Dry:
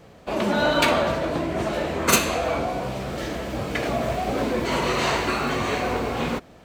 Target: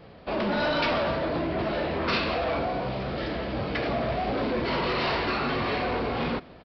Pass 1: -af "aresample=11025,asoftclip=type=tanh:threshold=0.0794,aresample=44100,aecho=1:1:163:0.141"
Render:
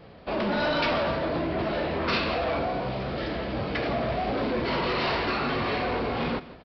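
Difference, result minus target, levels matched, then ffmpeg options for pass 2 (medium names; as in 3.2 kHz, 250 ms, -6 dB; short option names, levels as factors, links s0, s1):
echo-to-direct +8 dB
-af "aresample=11025,asoftclip=type=tanh:threshold=0.0794,aresample=44100,aecho=1:1:163:0.0562"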